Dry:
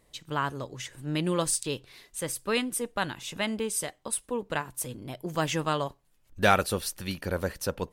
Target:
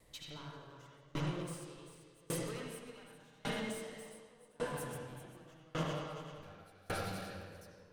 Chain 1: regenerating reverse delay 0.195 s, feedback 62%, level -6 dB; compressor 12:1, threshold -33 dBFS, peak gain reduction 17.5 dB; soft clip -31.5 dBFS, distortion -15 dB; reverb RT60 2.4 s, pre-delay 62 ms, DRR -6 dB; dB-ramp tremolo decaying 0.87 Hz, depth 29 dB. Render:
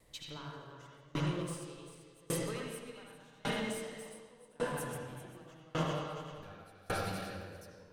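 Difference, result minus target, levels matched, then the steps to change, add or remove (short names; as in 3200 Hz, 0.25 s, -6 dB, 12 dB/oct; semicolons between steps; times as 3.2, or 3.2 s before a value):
soft clip: distortion -6 dB
change: soft clip -38.5 dBFS, distortion -8 dB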